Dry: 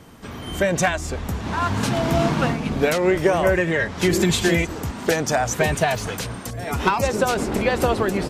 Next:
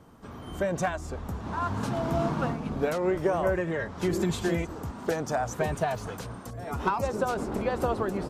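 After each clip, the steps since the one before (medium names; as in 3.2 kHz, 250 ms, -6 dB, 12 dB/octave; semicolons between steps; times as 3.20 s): resonant high shelf 1.6 kHz -6 dB, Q 1.5; trim -8 dB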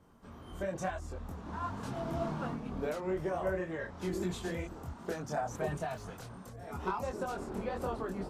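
chorus voices 6, 1.5 Hz, delay 24 ms, depth 3 ms; trim -5.5 dB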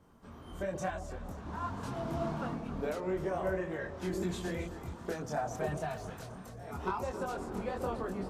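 echo whose repeats swap between lows and highs 133 ms, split 820 Hz, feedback 70%, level -10.5 dB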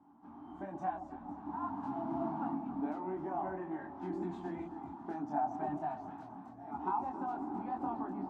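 two resonant band-passes 490 Hz, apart 1.5 oct; trim +9 dB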